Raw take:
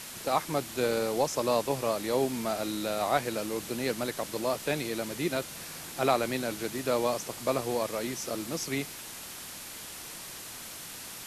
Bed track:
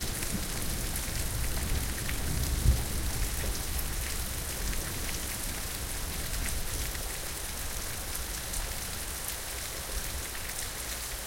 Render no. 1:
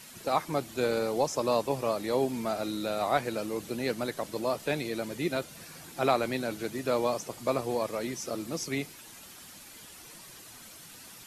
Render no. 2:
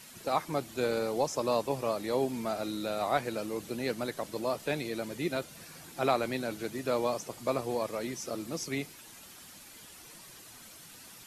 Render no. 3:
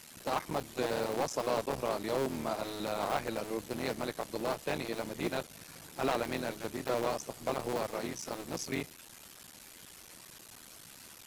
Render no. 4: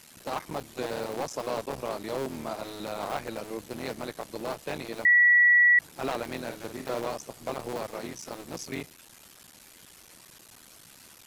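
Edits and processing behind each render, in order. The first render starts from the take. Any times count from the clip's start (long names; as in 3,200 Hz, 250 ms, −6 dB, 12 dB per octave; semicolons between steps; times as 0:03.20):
broadband denoise 9 dB, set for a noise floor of −43 dBFS
level −2 dB
sub-harmonics by changed cycles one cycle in 3, muted; hard clipping −24 dBFS, distortion −14 dB
0:05.05–0:05.79: beep over 1,940 Hz −15.5 dBFS; 0:06.42–0:07.00: double-tracking delay 50 ms −8 dB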